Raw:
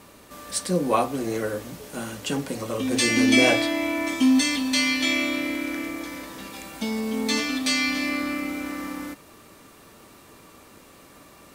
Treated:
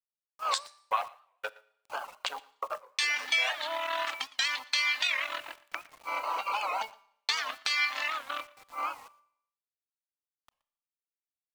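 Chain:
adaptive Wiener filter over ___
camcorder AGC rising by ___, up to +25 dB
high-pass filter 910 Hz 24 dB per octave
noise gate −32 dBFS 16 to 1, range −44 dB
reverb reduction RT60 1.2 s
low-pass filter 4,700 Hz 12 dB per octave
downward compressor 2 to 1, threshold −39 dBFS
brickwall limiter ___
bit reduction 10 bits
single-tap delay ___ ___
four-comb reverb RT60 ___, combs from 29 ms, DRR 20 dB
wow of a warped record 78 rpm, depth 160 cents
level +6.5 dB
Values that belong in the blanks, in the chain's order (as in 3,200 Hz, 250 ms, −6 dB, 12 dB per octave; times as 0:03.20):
25 samples, 47 dB per second, −19.5 dBFS, 117 ms, −22 dB, 0.71 s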